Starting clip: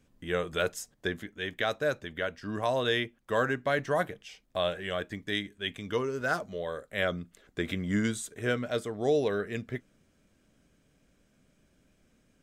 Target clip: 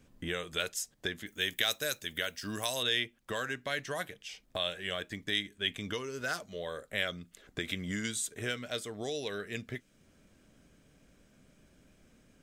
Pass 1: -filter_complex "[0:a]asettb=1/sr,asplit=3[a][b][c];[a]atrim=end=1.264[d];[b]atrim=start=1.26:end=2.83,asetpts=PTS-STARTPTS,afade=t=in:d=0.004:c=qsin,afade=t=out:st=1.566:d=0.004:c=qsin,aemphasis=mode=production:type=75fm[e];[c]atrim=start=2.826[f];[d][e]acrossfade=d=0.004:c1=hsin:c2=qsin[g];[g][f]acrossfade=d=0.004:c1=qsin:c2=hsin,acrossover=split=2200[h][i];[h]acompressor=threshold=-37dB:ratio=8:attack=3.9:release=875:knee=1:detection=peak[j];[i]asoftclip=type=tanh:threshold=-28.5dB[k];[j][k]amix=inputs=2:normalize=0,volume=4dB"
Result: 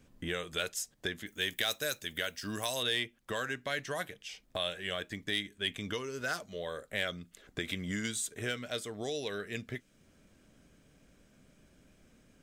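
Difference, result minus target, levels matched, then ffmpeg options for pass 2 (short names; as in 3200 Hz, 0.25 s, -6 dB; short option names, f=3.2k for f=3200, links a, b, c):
soft clip: distortion +16 dB
-filter_complex "[0:a]asettb=1/sr,asplit=3[a][b][c];[a]atrim=end=1.264[d];[b]atrim=start=1.26:end=2.83,asetpts=PTS-STARTPTS,afade=t=in:d=0.004:c=qsin,afade=t=out:st=1.566:d=0.004:c=qsin,aemphasis=mode=production:type=75fm[e];[c]atrim=start=2.826[f];[d][e]acrossfade=d=0.004:c1=hsin:c2=qsin[g];[g][f]acrossfade=d=0.004:c1=qsin:c2=hsin,acrossover=split=2200[h][i];[h]acompressor=threshold=-37dB:ratio=8:attack=3.9:release=875:knee=1:detection=peak[j];[i]asoftclip=type=tanh:threshold=-17.5dB[k];[j][k]amix=inputs=2:normalize=0,volume=4dB"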